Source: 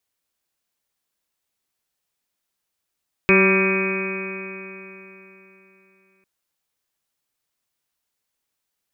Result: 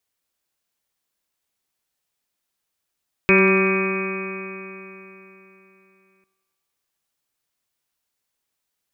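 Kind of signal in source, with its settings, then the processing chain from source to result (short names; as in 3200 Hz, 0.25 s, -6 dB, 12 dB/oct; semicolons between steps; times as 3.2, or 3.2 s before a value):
stretched partials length 2.95 s, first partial 190 Hz, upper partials 3/-8/-19.5/-12.5/-7/-11.5/-8/-9.5/-13.5/0/2 dB, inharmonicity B 0.0014, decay 3.50 s, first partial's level -18 dB
thinning echo 95 ms, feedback 68%, high-pass 290 Hz, level -14.5 dB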